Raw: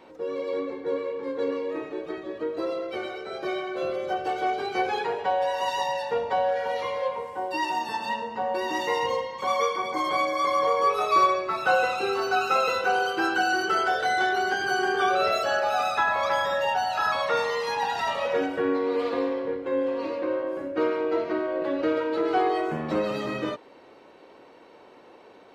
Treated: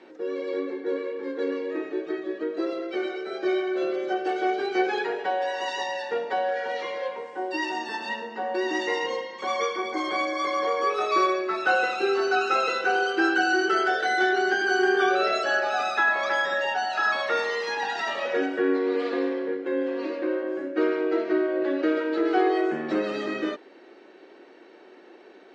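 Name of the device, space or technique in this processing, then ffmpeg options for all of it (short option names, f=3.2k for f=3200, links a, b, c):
television speaker: -af "highpass=f=210:w=0.5412,highpass=f=210:w=1.3066,equalizer=f=360:t=q:w=4:g=8,equalizer=f=510:t=q:w=4:g=-4,equalizer=f=1k:t=q:w=4:g=-8,equalizer=f=1.7k:t=q:w=4:g=6,lowpass=f=7.3k:w=0.5412,lowpass=f=7.3k:w=1.3066"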